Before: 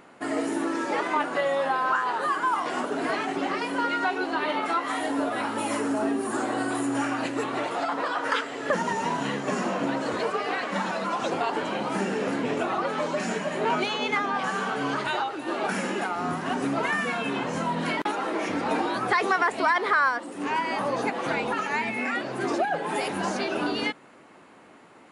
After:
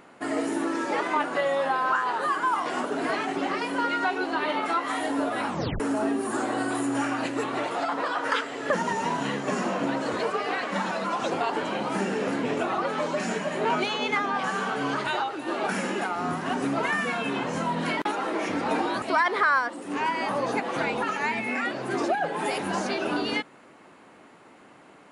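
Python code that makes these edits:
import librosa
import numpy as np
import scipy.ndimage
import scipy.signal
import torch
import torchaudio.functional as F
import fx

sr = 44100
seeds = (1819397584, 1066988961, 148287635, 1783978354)

y = fx.edit(x, sr, fx.tape_stop(start_s=5.47, length_s=0.33),
    fx.cut(start_s=19.02, length_s=0.5), tone=tone)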